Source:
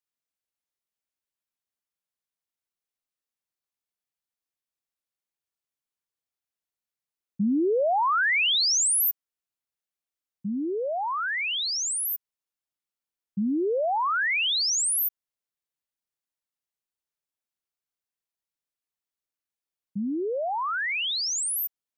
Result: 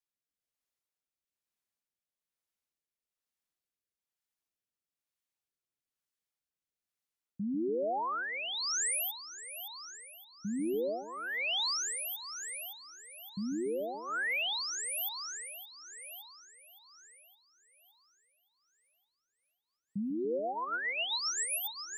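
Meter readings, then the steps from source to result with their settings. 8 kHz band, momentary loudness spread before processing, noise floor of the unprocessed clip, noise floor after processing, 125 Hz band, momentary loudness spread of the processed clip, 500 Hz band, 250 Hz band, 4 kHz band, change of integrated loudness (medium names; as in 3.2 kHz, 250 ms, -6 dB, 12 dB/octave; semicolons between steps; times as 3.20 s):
-9.0 dB, 11 LU, under -85 dBFS, under -85 dBFS, -7.5 dB, 15 LU, -7.5 dB, -7.5 dB, -8.5 dB, -10.0 dB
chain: peak limiter -29 dBFS, peak gain reduction 9 dB; two-band feedback delay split 570 Hz, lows 143 ms, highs 566 ms, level -9.5 dB; rotary cabinet horn 1.1 Hz, later 7.5 Hz, at 19.16 s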